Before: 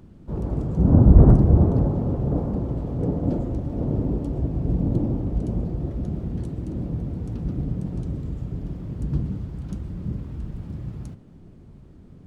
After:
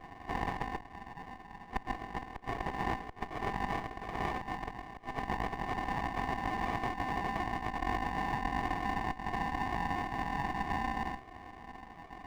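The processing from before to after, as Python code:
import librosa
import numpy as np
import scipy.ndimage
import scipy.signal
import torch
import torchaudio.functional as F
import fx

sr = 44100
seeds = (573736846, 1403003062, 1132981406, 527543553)

y = scipy.signal.sosfilt(scipy.signal.butter(4, 77.0, 'highpass', fs=sr, output='sos'), x)
y = y * np.sin(2.0 * np.pi * 900.0 * np.arange(len(y)) / sr)
y = fx.gate_flip(y, sr, shuts_db=-12.0, range_db=-33)
y = fx.lowpass_res(y, sr, hz=940.0, q=2.2)
y = fx.fixed_phaser(y, sr, hz=390.0, stages=8)
y = fx.over_compress(y, sr, threshold_db=-30.0, ratio=-0.5)
y = fx.peak_eq(y, sr, hz=330.0, db=5.0, octaves=2.0)
y = fx.running_max(y, sr, window=17)
y = F.gain(torch.from_numpy(y), -5.0).numpy()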